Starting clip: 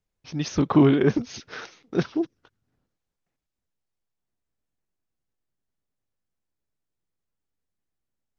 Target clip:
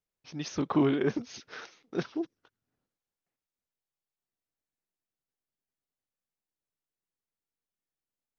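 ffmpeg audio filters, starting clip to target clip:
ffmpeg -i in.wav -af "lowshelf=frequency=140:gain=-11,volume=-6dB" out.wav

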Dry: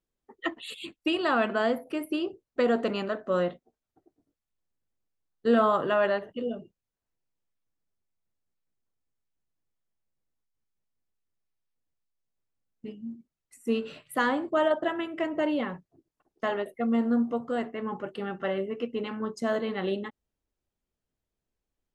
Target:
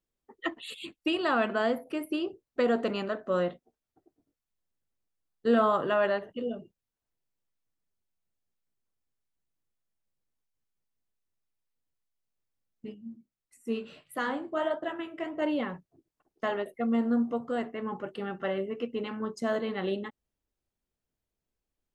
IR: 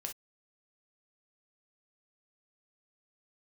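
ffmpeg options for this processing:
-filter_complex "[0:a]asettb=1/sr,asplit=3[link_01][link_02][link_03];[link_01]atrim=end=12.944[link_04];[link_02]atrim=start=12.94:end=15.42,asetpts=PTS-STARTPTS,afade=type=in:duration=0.004:curve=qsin,afade=type=out:start_time=2.476:duration=0.004:curve=qsin,flanger=delay=9.5:depth=7.5:regen=-50:speed=1.6:shape=sinusoidal[link_05];[link_03]atrim=start=15.416[link_06];[link_04][link_05]acrossfade=duration=0.004:curve1=hsin:curve2=qsin[link_07];[link_07][link_06]acrossfade=duration=0.004:curve1=qsin:curve2=hsin,volume=-1.5dB"

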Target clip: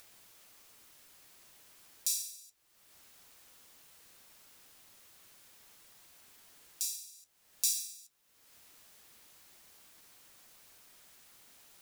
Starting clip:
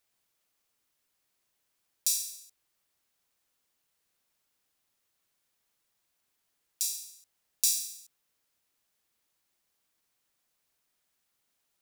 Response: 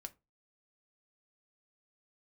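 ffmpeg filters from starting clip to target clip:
-af "acompressor=mode=upward:threshold=-36dB:ratio=2.5,flanger=delay=9.2:depth=4.6:regen=-57:speed=0.38:shape=sinusoidal"

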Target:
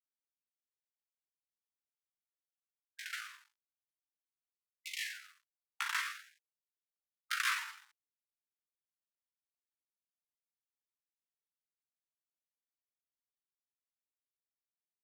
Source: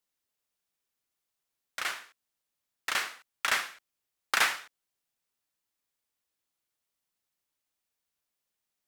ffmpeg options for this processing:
ffmpeg -i in.wav -filter_complex "[0:a]acrossover=split=1600[link_01][link_02];[link_01]crystalizer=i=4:c=0[link_03];[link_03][link_02]amix=inputs=2:normalize=0,atempo=0.59,aeval=exprs='sgn(val(0))*max(abs(val(0))-0.00224,0)':channel_layout=same,afftfilt=real='re*gte(b*sr/1024,800*pow(2200/800,0.5+0.5*sin(2*PI*0.48*pts/sr)))':imag='im*gte(b*sr/1024,800*pow(2200/800,0.5+0.5*sin(2*PI*0.48*pts/sr)))':win_size=1024:overlap=0.75,volume=-9dB" out.wav

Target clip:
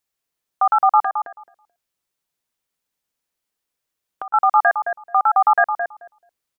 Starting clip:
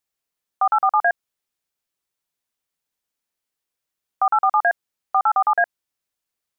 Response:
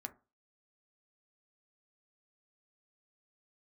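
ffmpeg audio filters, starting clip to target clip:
-filter_complex "[0:a]asettb=1/sr,asplit=3[link_01][link_02][link_03];[link_01]atrim=end=1.004[link_04];[link_02]atrim=start=1:end=4.34,asetpts=PTS-STARTPTS,afade=type=in:duration=0.004:curve=qsin,afade=type=out:start_time=3.336:duration=0.004:curve=qsin,acompressor=threshold=-32dB:ratio=8[link_05];[link_03]atrim=start=4.336[link_06];[link_04][link_05]acrossfade=duration=0.004:curve1=hsin:curve2=qsin[link_07];[link_07][link_06]acrossfade=duration=0.004:curve1=qsin:curve2=hsin,asplit=2[link_08][link_09];[link_09]adelay=217,lowpass=frequency=940:poles=1,volume=-4dB,asplit=2[link_10][link_11];[link_11]adelay=217,lowpass=frequency=940:poles=1,volume=0.18,asplit=2[link_12][link_13];[link_13]adelay=217,lowpass=frequency=940:poles=1,volume=0.18[link_14];[link_08][link_10][link_12][link_14]amix=inputs=4:normalize=0,volume=2dB"

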